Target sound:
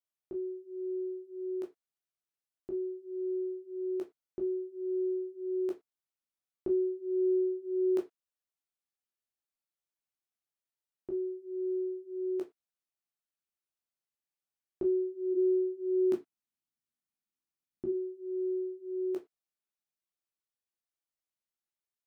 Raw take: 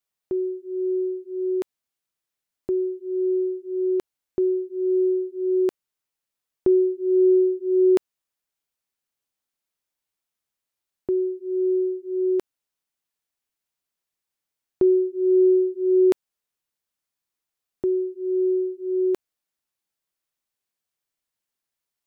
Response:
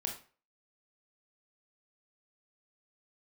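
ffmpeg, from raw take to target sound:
-filter_complex "[0:a]asplit=3[s0][s1][s2];[s0]afade=t=out:st=15.33:d=0.02[s3];[s1]equalizer=f=125:t=o:w=1:g=6,equalizer=f=250:t=o:w=1:g=10,equalizer=f=500:t=o:w=1:g=-7,afade=t=in:st=15.33:d=0.02,afade=t=out:st=17.88:d=0.02[s4];[s2]afade=t=in:st=17.88:d=0.02[s5];[s3][s4][s5]amix=inputs=3:normalize=0[s6];[1:a]atrim=start_sample=2205,afade=t=out:st=0.27:d=0.01,atrim=end_sample=12348,asetrate=79380,aresample=44100[s7];[s6][s7]afir=irnorm=-1:irlink=0,volume=0.422"

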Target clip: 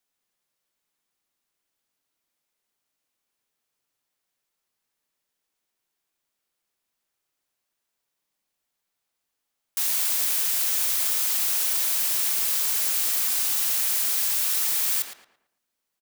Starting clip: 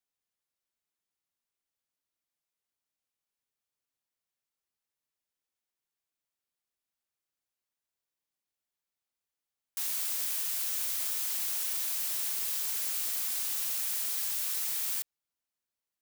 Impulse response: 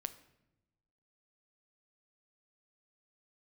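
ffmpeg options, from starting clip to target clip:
-filter_complex "[0:a]equalizer=f=70:t=o:w=1.1:g=-8.5,asplit=2[s0][s1];[s1]adelay=112,lowpass=f=2400:p=1,volume=0.668,asplit=2[s2][s3];[s3]adelay=112,lowpass=f=2400:p=1,volume=0.39,asplit=2[s4][s5];[s5]adelay=112,lowpass=f=2400:p=1,volume=0.39,asplit=2[s6][s7];[s7]adelay=112,lowpass=f=2400:p=1,volume=0.39,asplit=2[s8][s9];[s9]adelay=112,lowpass=f=2400:p=1,volume=0.39[s10];[s0][s2][s4][s6][s8][s10]amix=inputs=6:normalize=0,volume=2.66"

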